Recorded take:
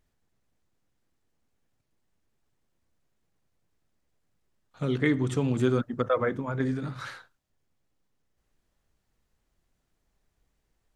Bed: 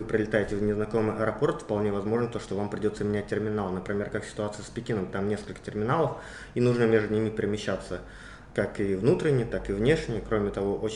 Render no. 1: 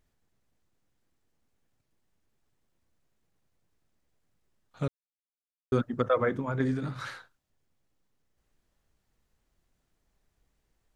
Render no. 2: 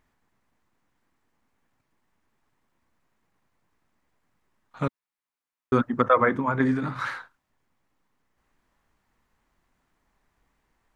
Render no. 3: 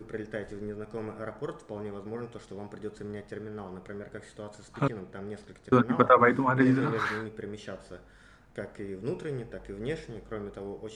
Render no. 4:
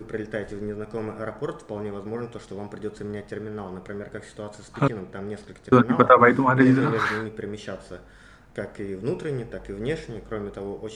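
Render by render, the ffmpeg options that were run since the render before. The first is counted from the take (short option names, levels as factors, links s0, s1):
-filter_complex "[0:a]asplit=3[s0][s1][s2];[s0]atrim=end=4.88,asetpts=PTS-STARTPTS,afade=t=out:st=4.876:d=0.004:c=hsin[s3];[s1]atrim=start=4.88:end=5.72,asetpts=PTS-STARTPTS,volume=0[s4];[s2]atrim=start=5.72,asetpts=PTS-STARTPTS,afade=t=in:d=0.004:c=hsin[s5];[s3][s4][s5]concat=n=3:v=0:a=1"
-af "equalizer=f=250:t=o:w=1:g=6,equalizer=f=1000:t=o:w=1:g=11,equalizer=f=2000:t=o:w=1:g=7"
-filter_complex "[1:a]volume=0.282[s0];[0:a][s0]amix=inputs=2:normalize=0"
-af "volume=2,alimiter=limit=0.794:level=0:latency=1"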